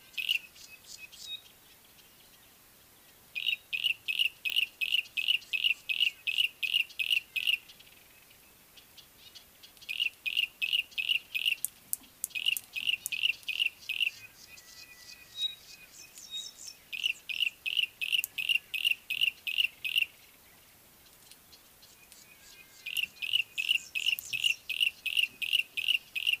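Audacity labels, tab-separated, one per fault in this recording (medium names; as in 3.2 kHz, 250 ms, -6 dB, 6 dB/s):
4.500000	4.500000	pop -17 dBFS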